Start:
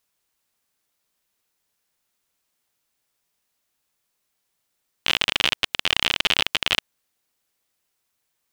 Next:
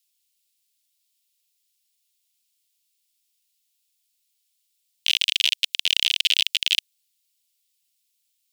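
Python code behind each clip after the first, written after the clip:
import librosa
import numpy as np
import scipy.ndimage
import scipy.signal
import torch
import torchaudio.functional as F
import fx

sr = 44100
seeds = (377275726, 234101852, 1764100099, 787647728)

y = scipy.signal.sosfilt(scipy.signal.cheby2(4, 60, 830.0, 'highpass', fs=sr, output='sos'), x)
y = fx.notch(y, sr, hz=6100.0, q=24.0)
y = y * 10.0 ** (3.5 / 20.0)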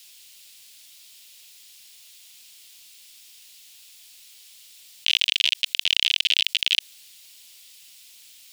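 y = fx.high_shelf(x, sr, hz=6200.0, db=-9.5)
y = fx.env_flatten(y, sr, amount_pct=50)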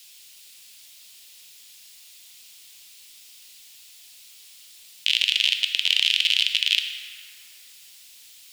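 y = fx.rev_plate(x, sr, seeds[0], rt60_s=3.4, hf_ratio=0.4, predelay_ms=0, drr_db=3.5)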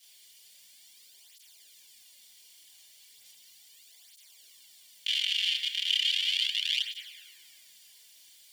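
y = fx.chorus_voices(x, sr, voices=2, hz=0.76, base_ms=28, depth_ms=4.6, mix_pct=55)
y = fx.notch_comb(y, sr, f0_hz=1300.0)
y = fx.flanger_cancel(y, sr, hz=0.36, depth_ms=4.7)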